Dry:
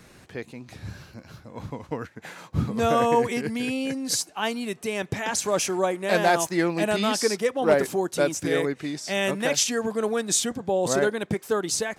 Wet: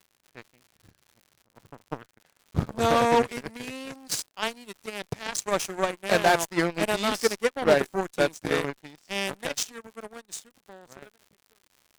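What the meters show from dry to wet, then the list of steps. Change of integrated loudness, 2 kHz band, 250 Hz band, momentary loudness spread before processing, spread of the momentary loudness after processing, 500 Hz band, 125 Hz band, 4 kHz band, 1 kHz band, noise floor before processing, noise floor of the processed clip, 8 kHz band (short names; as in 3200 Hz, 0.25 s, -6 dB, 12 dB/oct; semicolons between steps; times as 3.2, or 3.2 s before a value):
-2.0 dB, -1.5 dB, -5.0 dB, 17 LU, 18 LU, -3.0 dB, -3.5 dB, -3.0 dB, -1.0 dB, -52 dBFS, -71 dBFS, -7.0 dB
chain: ending faded out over 3.44 s; added harmonics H 7 -17 dB, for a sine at -9.5 dBFS; crackle 130/s -44 dBFS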